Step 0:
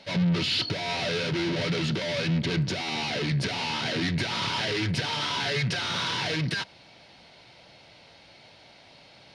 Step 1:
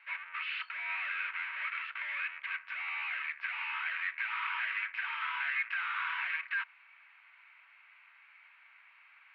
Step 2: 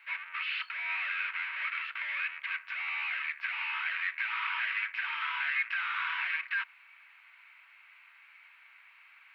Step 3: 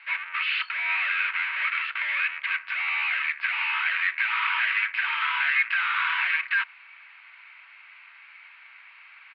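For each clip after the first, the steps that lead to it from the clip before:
elliptic band-pass 1100–2500 Hz, stop band 70 dB
high shelf 3900 Hz +11 dB
downsampling 11025 Hz; gain +8 dB

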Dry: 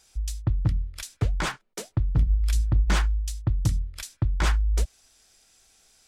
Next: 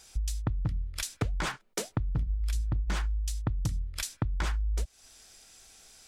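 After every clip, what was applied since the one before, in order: compressor 6:1, threshold -33 dBFS, peak gain reduction 15 dB; gain +5 dB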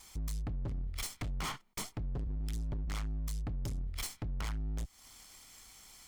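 minimum comb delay 0.92 ms; overloaded stage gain 35.5 dB; gain +1 dB

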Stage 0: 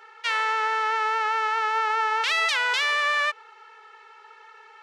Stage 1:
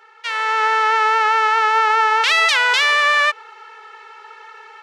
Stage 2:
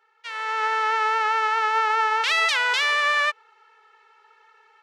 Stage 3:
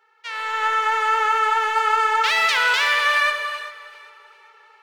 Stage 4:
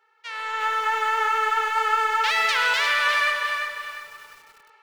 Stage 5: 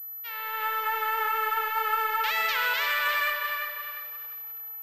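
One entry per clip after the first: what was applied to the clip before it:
AGC gain up to 9 dB
upward expander 1.5:1, over -35 dBFS; gain -5.5 dB
in parallel at -12 dB: wavefolder -25 dBFS; on the sum: echo with dull and thin repeats by turns 0.197 s, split 1500 Hz, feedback 59%, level -12.5 dB; non-linear reverb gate 0.42 s flat, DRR 4.5 dB; gain +1 dB
lo-fi delay 0.35 s, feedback 35%, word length 7-bit, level -6.5 dB; gain -3.5 dB
pulse-width modulation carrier 12000 Hz; gain -5 dB

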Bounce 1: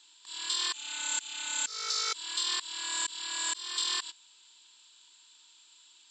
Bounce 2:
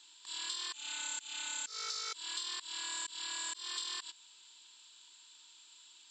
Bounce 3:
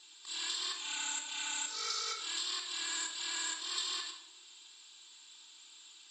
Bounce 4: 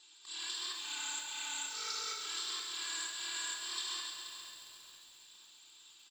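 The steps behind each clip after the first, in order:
compressor, threshold -37 dBFS, peak gain reduction 10 dB
vibrato 13 Hz 43 cents; reverb RT60 0.90 s, pre-delay 3 ms, DRR -0.5 dB
feedback echo 0.48 s, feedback 44%, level -13 dB; lo-fi delay 0.136 s, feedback 80%, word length 9-bit, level -7.5 dB; gain -3.5 dB

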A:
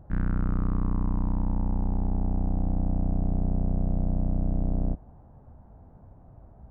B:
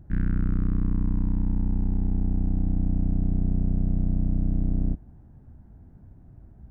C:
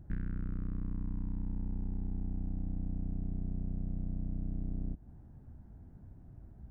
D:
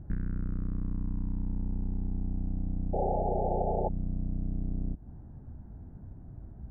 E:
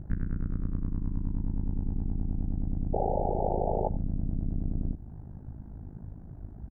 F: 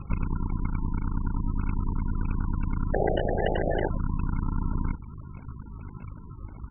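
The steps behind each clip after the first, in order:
band shelf 760 Hz -11.5 dB; gain +2 dB
compressor 6:1, threshold -28 dBFS, peak gain reduction 9.5 dB; gain -3.5 dB
painted sound noise, 2.93–3.89, 350–880 Hz -34 dBFS; compressor 1.5:1, threshold -37 dBFS, peak gain reduction 4 dB; LPF 1600 Hz 12 dB/oct; gain +6.5 dB
in parallel at +1.5 dB: limiter -25.5 dBFS, peak gain reduction 8 dB; on the sum: AM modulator 52 Hz, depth 75%; echo 90 ms -19.5 dB
sample-and-hold 37×; gain +3 dB; MP3 8 kbps 24000 Hz

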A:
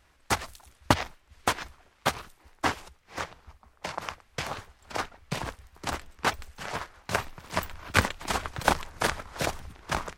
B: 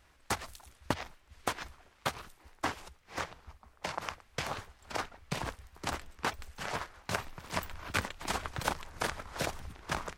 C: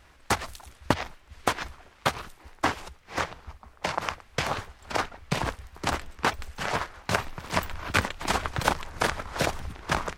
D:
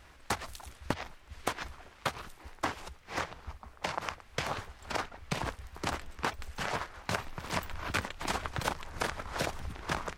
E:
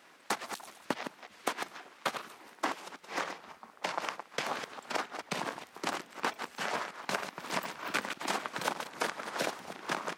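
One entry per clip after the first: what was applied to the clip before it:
compressor 3:1, threshold -30 dBFS, peak gain reduction 11.5 dB; gain -1 dB
high shelf 5900 Hz -4.5 dB; gain +8.5 dB
compressor 2:1, threshold -35 dBFS, peak gain reduction 10.5 dB
reverse delay 0.141 s, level -8 dB; HPF 200 Hz 24 dB/oct

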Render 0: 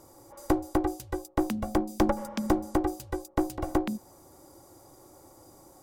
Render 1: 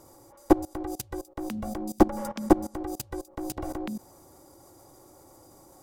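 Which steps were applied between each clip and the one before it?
level quantiser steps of 21 dB; gain +9 dB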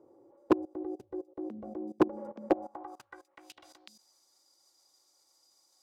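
band-pass sweep 400 Hz -> 4600 Hz, 2.32–3.79; wavefolder -13 dBFS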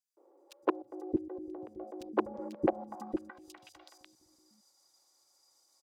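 three bands offset in time highs, mids, lows 0.17/0.63 s, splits 340/3600 Hz

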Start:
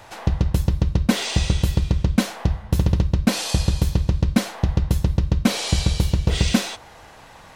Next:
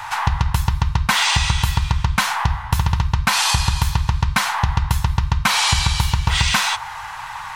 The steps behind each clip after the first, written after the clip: EQ curve 140 Hz 0 dB, 260 Hz -20 dB, 600 Hz -11 dB, 890 Hz +14 dB, 4400 Hz +5 dB; compressor, threshold -18 dBFS, peak gain reduction 6.5 dB; gain +5 dB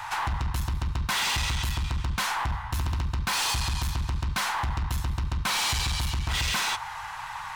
hard clip -18.5 dBFS, distortion -7 dB; gain -5.5 dB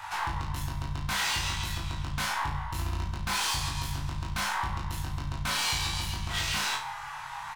flange 0.65 Hz, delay 5.1 ms, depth 2.4 ms, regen +70%; doubler 21 ms -2 dB; on a send: flutter echo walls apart 6.1 m, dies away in 0.36 s; on the sum: gain -1.5 dB

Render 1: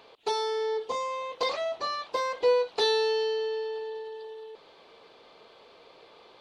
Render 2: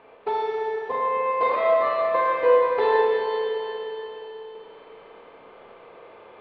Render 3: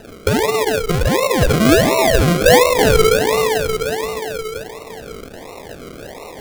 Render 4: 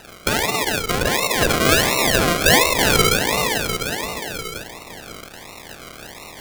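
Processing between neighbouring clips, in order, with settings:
LPF 2300 Hz 24 dB/oct; Schroeder reverb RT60 3.4 s, combs from 26 ms, DRR -4 dB; gain +2.5 dB
in parallel at +3 dB: compressor, threshold -31 dBFS, peak gain reduction 16.5 dB; on the sum: decimation with a swept rate 39×, swing 60% 1.4 Hz; gain +5.5 dB
spectral limiter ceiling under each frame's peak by 17 dB; de-hum 286.8 Hz, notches 27; gain -4 dB

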